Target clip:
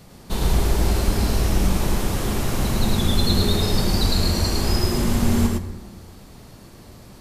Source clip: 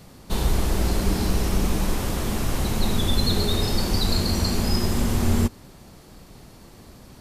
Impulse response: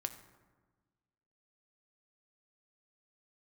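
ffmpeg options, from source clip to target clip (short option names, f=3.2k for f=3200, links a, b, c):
-filter_complex "[0:a]asplit=2[a][b];[1:a]atrim=start_sample=2205,adelay=107[c];[b][c]afir=irnorm=-1:irlink=0,volume=-1dB[d];[a][d]amix=inputs=2:normalize=0"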